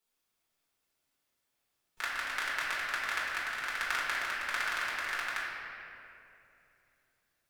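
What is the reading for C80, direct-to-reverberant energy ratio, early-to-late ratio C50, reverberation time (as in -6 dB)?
0.0 dB, -8.0 dB, -1.5 dB, 2.7 s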